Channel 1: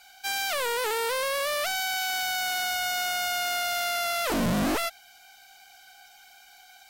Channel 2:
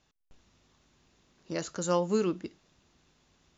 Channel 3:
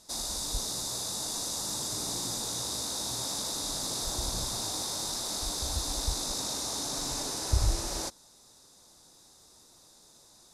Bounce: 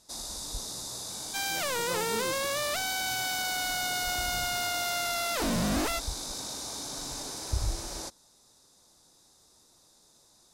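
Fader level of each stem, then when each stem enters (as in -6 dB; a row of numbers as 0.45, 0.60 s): -3.5, -11.0, -4.0 dB; 1.10, 0.00, 0.00 s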